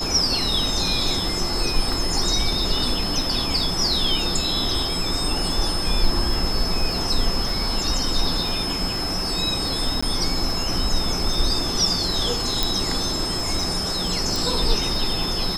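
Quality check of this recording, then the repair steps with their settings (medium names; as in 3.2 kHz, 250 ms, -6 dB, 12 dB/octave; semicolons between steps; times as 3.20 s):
crackle 27 per s -28 dBFS
whine 5.2 kHz -26 dBFS
10.01–10.03 s: dropout 15 ms
12.63 s: pop
14.36 s: pop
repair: de-click; band-stop 5.2 kHz, Q 30; interpolate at 10.01 s, 15 ms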